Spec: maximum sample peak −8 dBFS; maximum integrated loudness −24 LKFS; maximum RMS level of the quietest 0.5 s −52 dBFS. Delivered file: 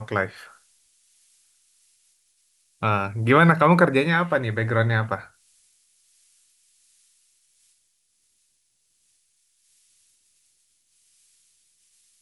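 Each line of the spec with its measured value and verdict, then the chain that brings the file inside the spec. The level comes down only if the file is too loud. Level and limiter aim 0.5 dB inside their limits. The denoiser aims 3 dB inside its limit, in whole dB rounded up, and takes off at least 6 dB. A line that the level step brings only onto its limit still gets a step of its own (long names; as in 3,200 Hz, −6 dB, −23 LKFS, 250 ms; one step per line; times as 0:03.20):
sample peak −3.5 dBFS: out of spec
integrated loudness −20.5 LKFS: out of spec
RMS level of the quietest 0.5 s −69 dBFS: in spec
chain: level −4 dB
brickwall limiter −8.5 dBFS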